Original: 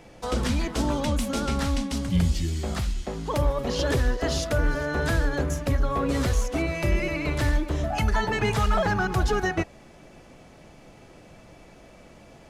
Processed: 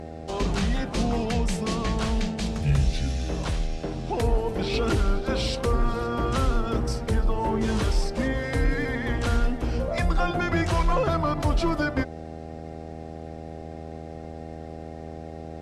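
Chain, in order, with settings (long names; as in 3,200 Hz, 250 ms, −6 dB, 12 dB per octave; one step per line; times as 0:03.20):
hum with harmonics 100 Hz, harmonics 10, −38 dBFS −2 dB per octave
speed change −20%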